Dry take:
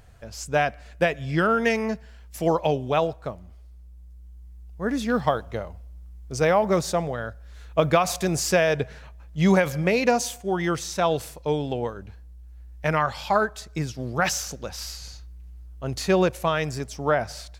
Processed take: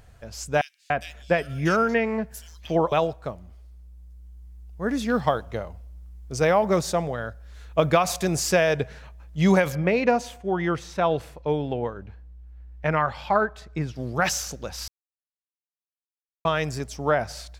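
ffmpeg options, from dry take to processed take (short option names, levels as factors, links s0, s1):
-filter_complex "[0:a]asettb=1/sr,asplit=3[s0][s1][s2];[s0]atrim=end=0.614[s3];[s1]atrim=start=0.61:end=2.92,asetpts=PTS-STARTPTS,afade=t=in:d=0.004:c=qsin,afade=t=out:st=2.306:d=0.004:c=qsin,acrossover=split=3100[s4][s5];[s4]adelay=290[s6];[s6][s5]amix=inputs=2:normalize=0,atrim=end_sample=101871[s7];[s2]atrim=start=2.916[s8];[s3][s7]acrossfade=d=0.004:c1=hsin:c2=qsin[s9];[s9][s8]acrossfade=d=0.004:c1=qsin:c2=hsin,asettb=1/sr,asplit=3[s10][s11][s12];[s10]atrim=end=9.754[s13];[s11]atrim=start=9.75:end=13.96,asetpts=PTS-STARTPTS,afade=t=in:d=0.004:c=qsin,afade=t=out:st=4.206:d=0.004:c=qsin,bass=f=250:g=0,treble=f=4000:g=-14[s14];[s12]atrim=start=13.956[s15];[s13][s14]acrossfade=d=0.004:c1=hsin:c2=qsin[s16];[s16][s15]acrossfade=d=0.004:c1=qsin:c2=hsin,asplit=3[s17][s18][s19];[s17]atrim=end=14.88,asetpts=PTS-STARTPTS,afade=t=out:st=14.876:d=0.004:c=hsin[s20];[s18]atrim=start=14.88:end=16.45,asetpts=PTS-STARTPTS,volume=0[s21];[s19]atrim=start=16.45,asetpts=PTS-STARTPTS,afade=t=in:d=0.004:c=hsin[s22];[s20][s21][s22]concat=n=3:v=0:a=1"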